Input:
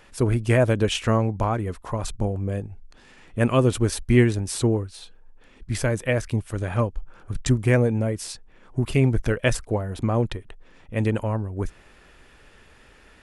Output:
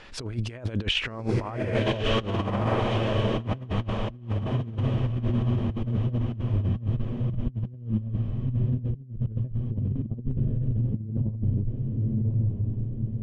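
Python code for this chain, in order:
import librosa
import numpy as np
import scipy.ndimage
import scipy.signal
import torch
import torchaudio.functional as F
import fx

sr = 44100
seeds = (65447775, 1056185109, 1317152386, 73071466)

y = fx.filter_sweep_lowpass(x, sr, from_hz=4500.0, to_hz=160.0, start_s=0.74, end_s=2.8, q=1.4)
y = fx.echo_diffused(y, sr, ms=1152, feedback_pct=51, wet_db=-5.5)
y = fx.over_compress(y, sr, threshold_db=-26.0, ratio=-0.5)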